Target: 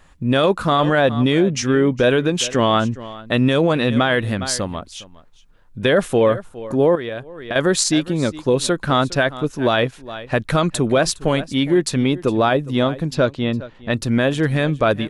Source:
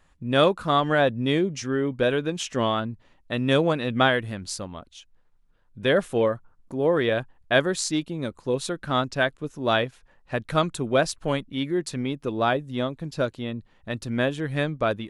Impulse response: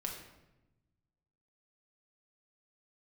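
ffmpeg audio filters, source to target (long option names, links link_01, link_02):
-filter_complex "[0:a]asettb=1/sr,asplit=3[link_01][link_02][link_03];[link_01]atrim=end=13.154[link_04];[link_02]atrim=start=13.15:end=13.93,asetpts=PTS-STARTPTS,afade=type=in:duration=0.004:curve=qsin,afade=type=out:start_time=0.776:duration=0.004:curve=qsin,lowpass=5500[link_05];[link_03]atrim=start=13.926[link_06];[link_04][link_05]acrossfade=duration=0.004:curve1=hsin:curve2=qsin[link_07];[link_07][link_06]acrossfade=duration=0.004:curve1=qsin:curve2=hsin,aecho=1:1:410:0.1,asettb=1/sr,asplit=3[link_08][link_09][link_10];[link_08]atrim=end=6.954[link_11];[link_09]atrim=start=6.95:end=7.56,asetpts=PTS-STARTPTS,afade=type=in:duration=0.004:curve=qsin,afade=type=out:start_time=0.606:duration=0.004:curve=qsin,acompressor=threshold=-35dB:ratio=8[link_12];[link_10]atrim=start=7.556[link_13];[link_11][link_12]acrossfade=duration=0.004:curve1=hsin:curve2=qsin[link_14];[link_14][link_13]acrossfade=duration=0.004:curve1=qsin:curve2=hsin,alimiter=level_in=16.5dB:limit=-1dB:release=50:level=0:latency=1,volume=-6dB"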